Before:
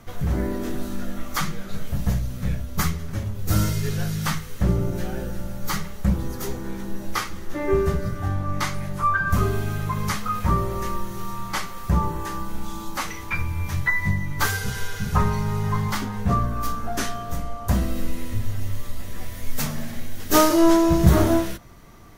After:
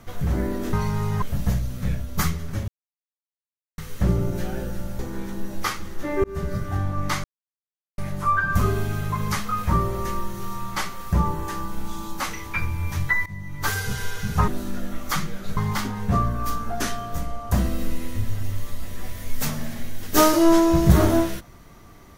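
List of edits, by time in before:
0.73–1.82 swap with 15.25–15.74
3.28–4.38 mute
5.59–6.5 cut
7.75–8.05 fade in
8.75 insert silence 0.74 s
14.03–14.6 fade in, from -20 dB

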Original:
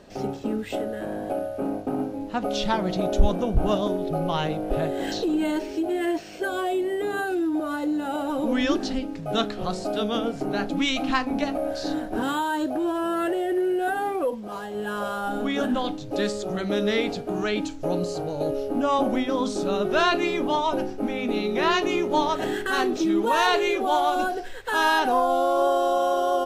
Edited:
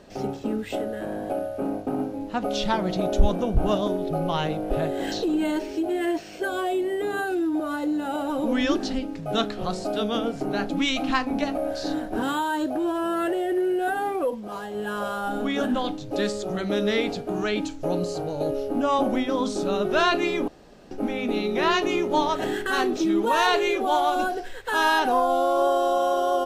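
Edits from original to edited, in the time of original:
20.48–20.91 room tone

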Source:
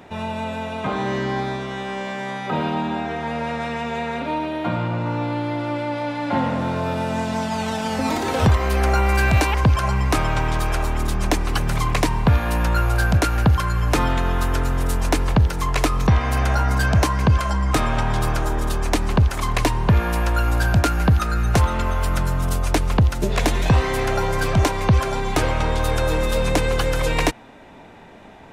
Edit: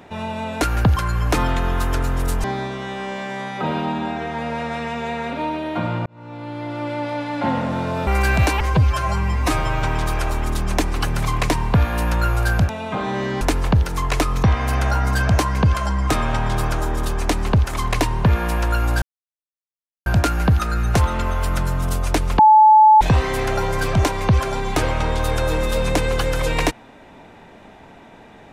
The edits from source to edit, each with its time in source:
0.61–1.33 swap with 13.22–15.05
4.95–5.87 fade in
6.96–9.01 cut
9.55–10.37 stretch 1.5×
20.66 insert silence 1.04 s
22.99–23.61 bleep 864 Hz -6.5 dBFS

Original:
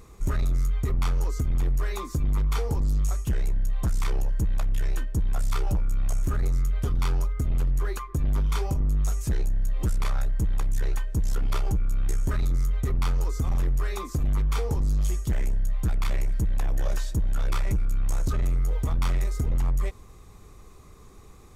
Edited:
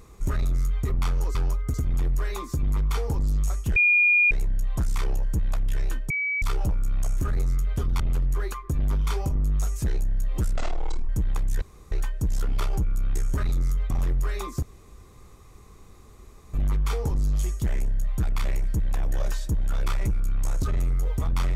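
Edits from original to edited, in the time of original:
3.37 add tone 2430 Hz -15.5 dBFS 0.55 s
5.16–5.48 bleep 2280 Hz -23.5 dBFS
7.06–7.45 move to 1.35
10.01–10.32 speed 59%
10.85 insert room tone 0.30 s
12.84–13.47 cut
14.19 insert room tone 1.91 s

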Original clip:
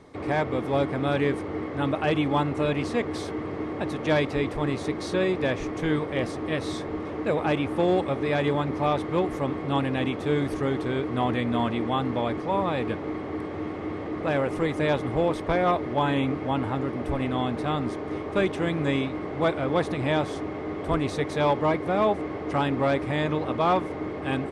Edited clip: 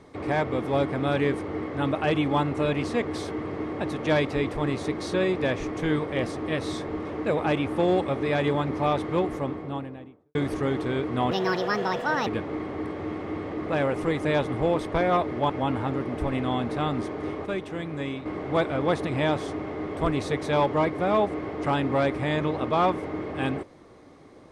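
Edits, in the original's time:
9.09–10.35 studio fade out
11.31–12.81 speed 157%
16.04–16.37 cut
18.33–19.13 gain -6.5 dB

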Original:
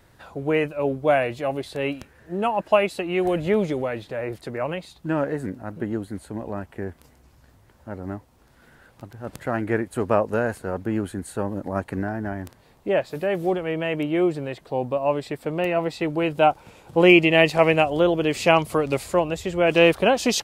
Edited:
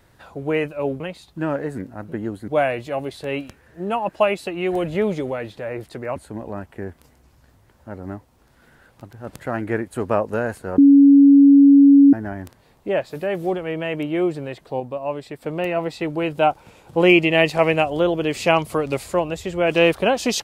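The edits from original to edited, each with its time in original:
4.68–6.16 move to 1
10.78–12.13 bleep 280 Hz -6.5 dBFS
14.8–15.42 gain -4 dB

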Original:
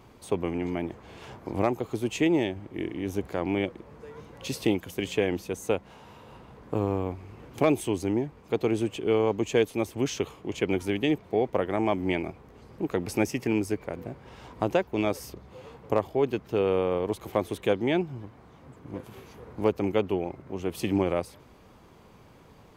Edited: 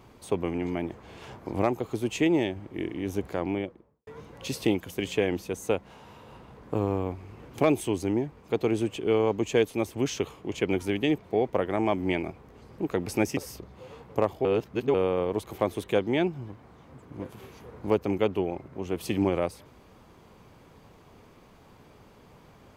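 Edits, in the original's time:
3.31–4.07 studio fade out
13.37–15.11 cut
16.19–16.68 reverse

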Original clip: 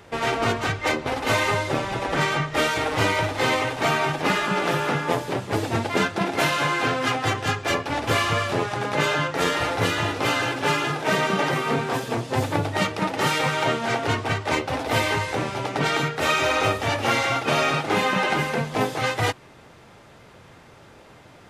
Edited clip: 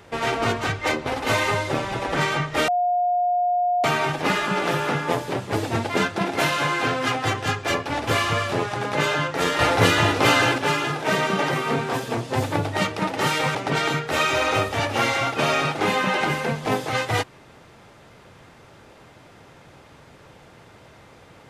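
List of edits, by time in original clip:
2.68–3.84 bleep 713 Hz -18 dBFS
9.59–10.58 gain +5.5 dB
13.55–15.64 cut

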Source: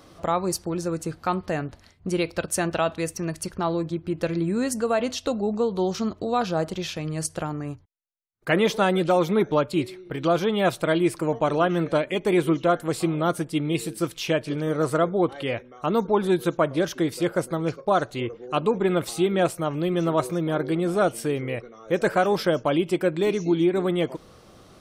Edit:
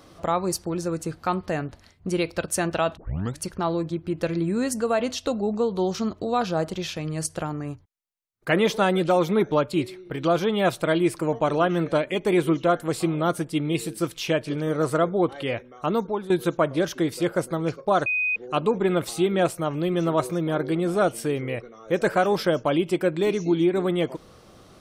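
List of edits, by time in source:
2.97 tape start 0.42 s
15.88–16.3 fade out linear, to -14 dB
18.06–18.36 bleep 2500 Hz -21 dBFS

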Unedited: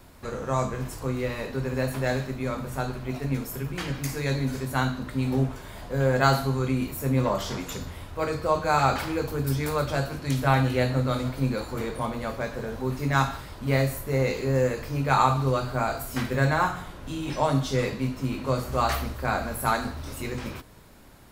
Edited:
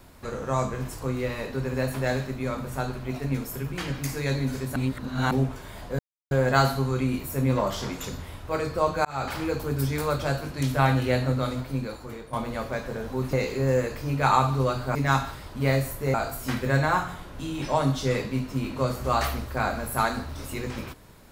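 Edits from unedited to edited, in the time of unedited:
4.76–5.31 reverse
5.99 insert silence 0.32 s
8.73–9.08 fade in
10.95–12.01 fade out, to -11.5 dB
13.01–14.2 move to 15.82

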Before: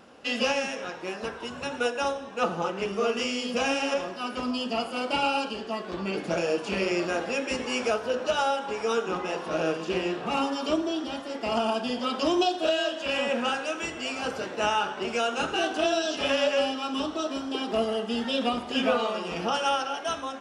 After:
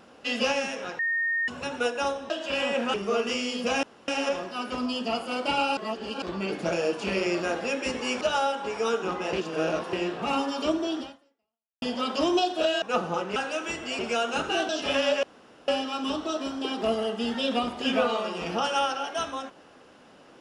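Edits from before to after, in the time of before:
0.99–1.48 bleep 1840 Hz -23.5 dBFS
2.3–2.84 swap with 12.86–13.5
3.73 insert room tone 0.25 s
5.42–5.87 reverse
7.86–8.25 cut
9.37–9.97 reverse
11.05–11.86 fade out exponential
14.13–15.03 cut
15.73–16.04 cut
16.58 insert room tone 0.45 s

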